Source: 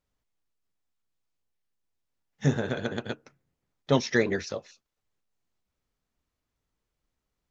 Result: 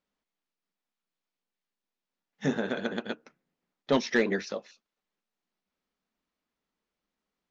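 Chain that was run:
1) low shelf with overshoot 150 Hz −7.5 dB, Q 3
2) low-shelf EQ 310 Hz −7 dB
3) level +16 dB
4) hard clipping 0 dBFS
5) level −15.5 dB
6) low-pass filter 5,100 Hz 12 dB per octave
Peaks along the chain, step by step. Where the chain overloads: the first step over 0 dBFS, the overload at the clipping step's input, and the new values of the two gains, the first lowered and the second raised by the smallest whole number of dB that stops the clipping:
−9.0, −11.0, +5.0, 0.0, −15.5, −15.0 dBFS
step 3, 5.0 dB
step 3 +11 dB, step 5 −10.5 dB

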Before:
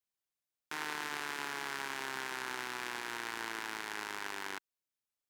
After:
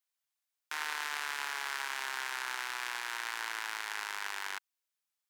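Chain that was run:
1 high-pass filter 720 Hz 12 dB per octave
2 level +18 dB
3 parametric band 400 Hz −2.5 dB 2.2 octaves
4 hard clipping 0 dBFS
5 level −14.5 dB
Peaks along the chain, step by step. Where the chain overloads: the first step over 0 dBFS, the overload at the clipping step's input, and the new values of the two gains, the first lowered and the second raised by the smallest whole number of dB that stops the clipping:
−21.5, −3.5, −3.5, −3.5, −18.0 dBFS
no step passes full scale

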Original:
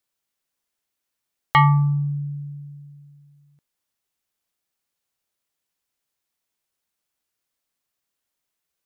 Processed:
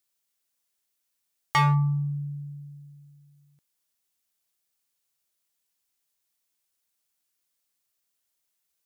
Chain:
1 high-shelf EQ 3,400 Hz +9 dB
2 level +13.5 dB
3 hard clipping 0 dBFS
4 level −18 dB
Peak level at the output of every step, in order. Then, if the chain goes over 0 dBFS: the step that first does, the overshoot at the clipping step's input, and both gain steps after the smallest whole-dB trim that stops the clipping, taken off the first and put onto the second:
−6.0, +7.5, 0.0, −18.0 dBFS
step 2, 7.5 dB
step 2 +5.5 dB, step 4 −10 dB

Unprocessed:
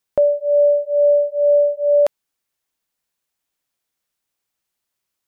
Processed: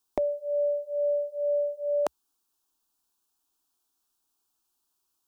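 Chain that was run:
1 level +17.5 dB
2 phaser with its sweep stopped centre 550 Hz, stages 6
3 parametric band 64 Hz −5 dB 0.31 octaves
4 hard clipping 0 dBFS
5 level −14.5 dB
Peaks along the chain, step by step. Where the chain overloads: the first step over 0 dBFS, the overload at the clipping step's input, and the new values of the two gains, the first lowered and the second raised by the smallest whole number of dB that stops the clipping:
+8.5, +5.5, +5.5, 0.0, −14.5 dBFS
step 1, 5.5 dB
step 1 +11.5 dB, step 5 −8.5 dB

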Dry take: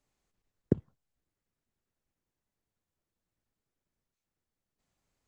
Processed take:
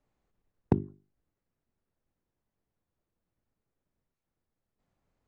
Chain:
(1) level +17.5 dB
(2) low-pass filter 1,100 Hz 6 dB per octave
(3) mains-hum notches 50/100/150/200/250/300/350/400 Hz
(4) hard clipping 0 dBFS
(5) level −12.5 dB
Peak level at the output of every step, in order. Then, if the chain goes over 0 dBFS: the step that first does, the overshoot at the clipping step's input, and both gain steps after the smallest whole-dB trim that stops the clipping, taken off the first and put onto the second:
+8.5, +8.0, +7.0, 0.0, −12.5 dBFS
step 1, 7.0 dB
step 1 +10.5 dB, step 5 −5.5 dB

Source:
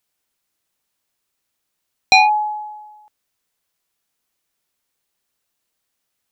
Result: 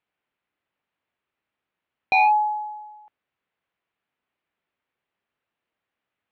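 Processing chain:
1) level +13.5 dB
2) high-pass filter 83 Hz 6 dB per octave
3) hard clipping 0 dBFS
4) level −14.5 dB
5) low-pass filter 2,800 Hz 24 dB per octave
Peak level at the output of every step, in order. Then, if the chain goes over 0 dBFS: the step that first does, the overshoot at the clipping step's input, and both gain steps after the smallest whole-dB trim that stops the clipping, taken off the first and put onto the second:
+9.0, +10.0, 0.0, −14.5, −12.5 dBFS
step 1, 10.0 dB
step 1 +3.5 dB, step 4 −4.5 dB

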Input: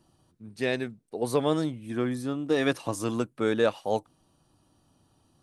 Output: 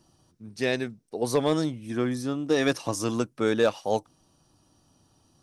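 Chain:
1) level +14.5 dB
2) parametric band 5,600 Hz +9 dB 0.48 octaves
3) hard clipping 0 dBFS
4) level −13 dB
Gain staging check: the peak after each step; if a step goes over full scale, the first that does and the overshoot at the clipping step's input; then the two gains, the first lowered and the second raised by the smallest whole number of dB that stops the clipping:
+3.5, +4.0, 0.0, −13.0 dBFS
step 1, 4.0 dB
step 1 +10.5 dB, step 4 −9 dB

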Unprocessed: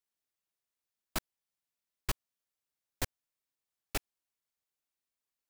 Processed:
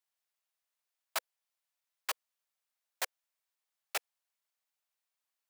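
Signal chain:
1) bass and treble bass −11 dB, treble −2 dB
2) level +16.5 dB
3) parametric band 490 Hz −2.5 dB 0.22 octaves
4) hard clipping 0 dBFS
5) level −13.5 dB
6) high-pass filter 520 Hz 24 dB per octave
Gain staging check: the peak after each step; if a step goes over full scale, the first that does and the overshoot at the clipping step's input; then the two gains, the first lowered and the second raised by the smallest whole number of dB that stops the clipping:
−21.5, −5.0, −5.0, −5.0, −18.5, −19.0 dBFS
no step passes full scale

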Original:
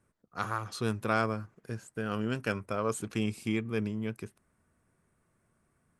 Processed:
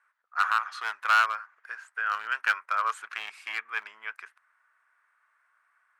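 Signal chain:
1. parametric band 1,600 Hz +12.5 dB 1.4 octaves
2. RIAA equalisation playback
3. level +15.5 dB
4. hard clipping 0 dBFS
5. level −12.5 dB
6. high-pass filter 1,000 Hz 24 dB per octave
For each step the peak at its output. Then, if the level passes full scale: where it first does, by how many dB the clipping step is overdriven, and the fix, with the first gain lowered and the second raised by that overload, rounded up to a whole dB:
−6.5, −7.0, +8.5, 0.0, −12.5, −10.0 dBFS
step 3, 8.5 dB
step 3 +6.5 dB, step 5 −3.5 dB

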